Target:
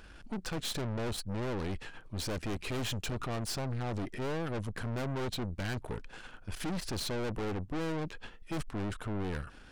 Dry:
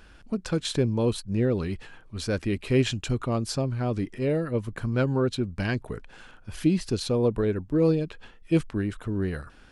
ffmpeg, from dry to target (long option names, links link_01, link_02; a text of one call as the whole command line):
ffmpeg -i in.wav -af "aeval=exprs='(tanh(70.8*val(0)+0.7)-tanh(0.7))/70.8':channel_layout=same,volume=3.5dB" out.wav